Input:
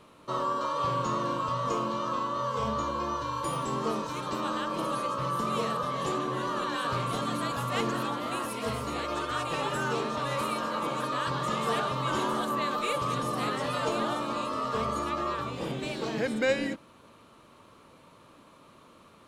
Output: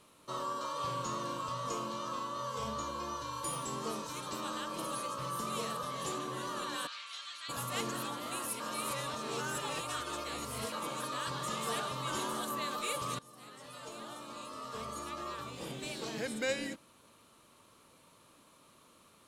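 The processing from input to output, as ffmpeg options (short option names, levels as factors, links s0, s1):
-filter_complex "[0:a]asplit=3[s0][s1][s2];[s0]afade=t=out:st=6.86:d=0.02[s3];[s1]asuperpass=centerf=3100:order=4:qfactor=0.85,afade=t=in:st=6.86:d=0.02,afade=t=out:st=7.48:d=0.02[s4];[s2]afade=t=in:st=7.48:d=0.02[s5];[s3][s4][s5]amix=inputs=3:normalize=0,asplit=4[s6][s7][s8][s9];[s6]atrim=end=8.602[s10];[s7]atrim=start=8.598:end=10.722,asetpts=PTS-STARTPTS,areverse[s11];[s8]atrim=start=10.718:end=13.19,asetpts=PTS-STARTPTS,afade=t=out:st=2.468:d=0.004:c=hsin:silence=0.0891251[s12];[s9]atrim=start=13.19,asetpts=PTS-STARTPTS,afade=t=in:d=2.76:silence=0.0891251[s13];[s10][s11]acrossfade=d=0.004:c1=hsin:c2=hsin[s14];[s12][s13]concat=n=2:v=0:a=1[s15];[s14][s15]acrossfade=d=0.004:c1=hsin:c2=hsin,lowpass=12000,aemphasis=mode=production:type=75fm,volume=0.398"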